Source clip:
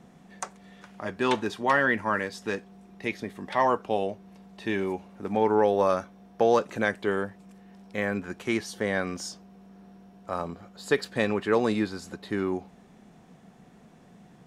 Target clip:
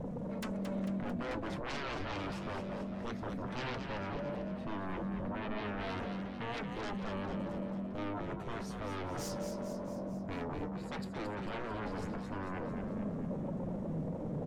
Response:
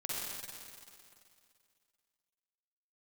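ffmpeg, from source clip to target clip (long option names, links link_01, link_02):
-filter_complex "[0:a]firequalizer=gain_entry='entry(150,0);entry(360,-19);entry(2700,-29)':delay=0.05:min_phase=1,areverse,acompressor=threshold=-52dB:ratio=6,areverse,aeval=exprs='0.00668*sin(PI/2*5.62*val(0)/0.00668)':channel_layout=same,flanger=delay=3.9:depth=4.7:regen=61:speed=0.16:shape=triangular,asplit=8[link_01][link_02][link_03][link_04][link_05][link_06][link_07][link_08];[link_02]adelay=223,afreqshift=43,volume=-7dB[link_09];[link_03]adelay=446,afreqshift=86,volume=-12dB[link_10];[link_04]adelay=669,afreqshift=129,volume=-17.1dB[link_11];[link_05]adelay=892,afreqshift=172,volume=-22.1dB[link_12];[link_06]adelay=1115,afreqshift=215,volume=-27.1dB[link_13];[link_07]adelay=1338,afreqshift=258,volume=-32.2dB[link_14];[link_08]adelay=1561,afreqshift=301,volume=-37.2dB[link_15];[link_01][link_09][link_10][link_11][link_12][link_13][link_14][link_15]amix=inputs=8:normalize=0,volume=11dB"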